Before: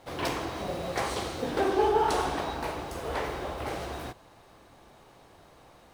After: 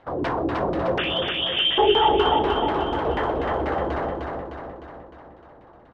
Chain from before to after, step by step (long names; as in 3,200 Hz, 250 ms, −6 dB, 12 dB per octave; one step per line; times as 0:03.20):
in parallel at −7 dB: log-companded quantiser 2 bits
on the sum: auto-filter low-pass saw down 4.1 Hz 260–2,600 Hz
0:00.98–0:01.78: voice inversion scrambler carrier 3,500 Hz
parametric band 2,300 Hz −8 dB 0.53 octaves
repeating echo 305 ms, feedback 56%, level −3.5 dB